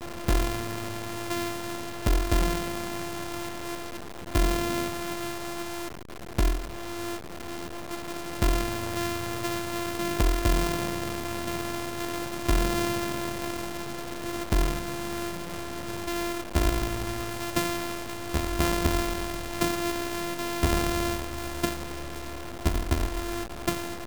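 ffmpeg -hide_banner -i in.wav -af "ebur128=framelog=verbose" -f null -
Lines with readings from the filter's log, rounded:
Integrated loudness:
  I:         -30.1 LUFS
  Threshold: -40.2 LUFS
Loudness range:
  LRA:         3.5 LU
  Threshold: -50.1 LUFS
  LRA low:   -32.0 LUFS
  LRA high:  -28.5 LUFS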